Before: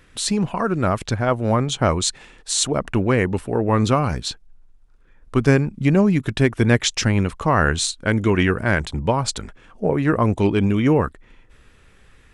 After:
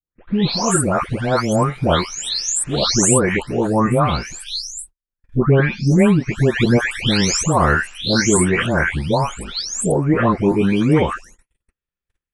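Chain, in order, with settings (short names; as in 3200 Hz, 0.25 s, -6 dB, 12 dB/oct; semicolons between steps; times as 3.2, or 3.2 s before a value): spectral delay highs late, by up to 0.54 s; gate -44 dBFS, range -43 dB; high shelf 5300 Hz +5.5 dB; gain +4 dB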